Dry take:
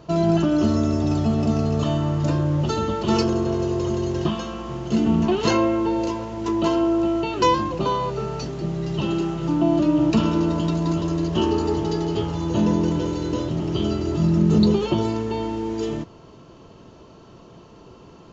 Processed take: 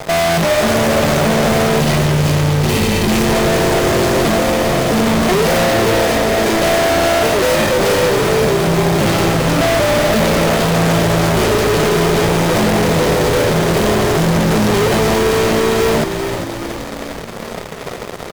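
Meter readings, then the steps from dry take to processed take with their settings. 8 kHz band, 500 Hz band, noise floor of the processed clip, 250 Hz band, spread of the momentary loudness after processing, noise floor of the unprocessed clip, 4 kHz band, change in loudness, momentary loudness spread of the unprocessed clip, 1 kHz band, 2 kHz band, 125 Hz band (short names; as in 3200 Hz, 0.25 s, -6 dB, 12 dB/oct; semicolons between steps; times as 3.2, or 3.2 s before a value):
n/a, +11.5 dB, -27 dBFS, +4.0 dB, 8 LU, -46 dBFS, +14.0 dB, +8.5 dB, 8 LU, +10.0 dB, +19.5 dB, +7.0 dB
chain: median filter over 41 samples; spectral gain 1.79–3.29, 400–1900 Hz -13 dB; HPF 310 Hz 12 dB/oct; high shelf 4100 Hz +6.5 dB; comb 1.6 ms, depth 89%; in parallel at -3 dB: sample-and-hold 31×; on the sum: vibrato 0.58 Hz 13 cents; fuzz box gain 39 dB, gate -48 dBFS; on a send: frequency-shifting echo 0.401 s, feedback 56%, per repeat -55 Hz, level -7.5 dB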